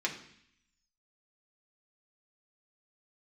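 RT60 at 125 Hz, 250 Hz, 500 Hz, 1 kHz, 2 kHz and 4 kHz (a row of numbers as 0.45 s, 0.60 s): 0.90 s, 0.85 s, 0.60 s, 0.70 s, 0.85 s, 0.85 s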